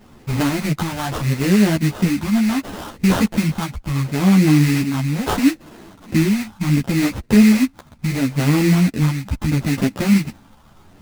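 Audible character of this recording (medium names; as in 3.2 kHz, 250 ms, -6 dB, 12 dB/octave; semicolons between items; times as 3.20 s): phasing stages 4, 0.73 Hz, lowest notch 370–2500 Hz; aliases and images of a low sample rate 2.3 kHz, jitter 20%; a shimmering, thickened sound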